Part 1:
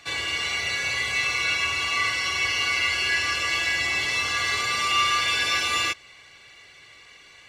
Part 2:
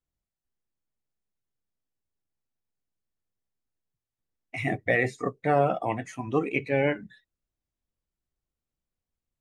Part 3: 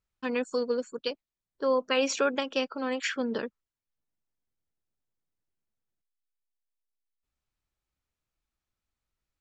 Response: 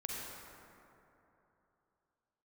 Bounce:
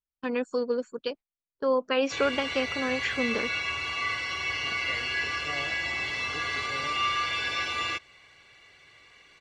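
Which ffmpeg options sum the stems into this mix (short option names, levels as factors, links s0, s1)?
-filter_complex "[0:a]adelay=2050,volume=0.631[s0];[1:a]volume=0.112[s1];[2:a]agate=range=0.178:threshold=0.00708:ratio=16:detection=peak,volume=1.12[s2];[s0][s1][s2]amix=inputs=3:normalize=0,acrossover=split=6600[s3][s4];[s4]acompressor=threshold=0.002:ratio=4:attack=1:release=60[s5];[s3][s5]amix=inputs=2:normalize=0,highshelf=f=4100:g=-8"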